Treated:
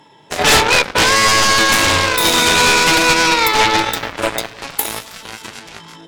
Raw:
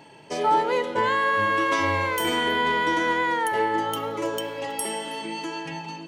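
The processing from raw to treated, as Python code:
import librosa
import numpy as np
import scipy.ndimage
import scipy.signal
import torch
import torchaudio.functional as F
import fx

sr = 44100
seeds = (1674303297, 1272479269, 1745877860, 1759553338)

y = fx.cheby_harmonics(x, sr, harmonics=(3, 7), levels_db=(-16, -21), full_scale_db=-10.5)
y = fx.formant_shift(y, sr, semitones=3)
y = fx.fold_sine(y, sr, drive_db=18, ceiling_db=-6.0)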